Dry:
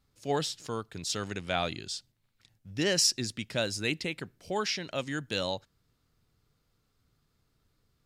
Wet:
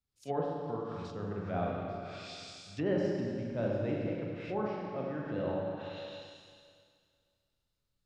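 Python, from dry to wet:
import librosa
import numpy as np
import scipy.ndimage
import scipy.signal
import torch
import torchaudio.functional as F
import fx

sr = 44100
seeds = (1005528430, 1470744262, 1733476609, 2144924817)

y = fx.rev_schroeder(x, sr, rt60_s=2.9, comb_ms=30, drr_db=-3.5)
y = fx.env_lowpass_down(y, sr, base_hz=930.0, full_db=-26.5)
y = fx.band_widen(y, sr, depth_pct=40)
y = F.gain(torch.from_numpy(y), -4.5).numpy()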